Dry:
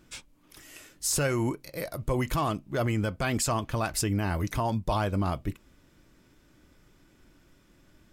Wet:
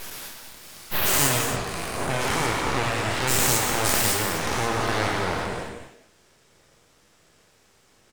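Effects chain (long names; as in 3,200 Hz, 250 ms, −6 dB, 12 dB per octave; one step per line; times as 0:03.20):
every bin's largest magnitude spread in time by 240 ms
Chebyshev band-pass filter 100–9,500 Hz, order 5
high-shelf EQ 4,900 Hz +8 dB
full-wave rectification
far-end echo of a speakerphone 190 ms, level −10 dB
reverb whose tail is shaped and stops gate 300 ms flat, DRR 3 dB
level −1 dB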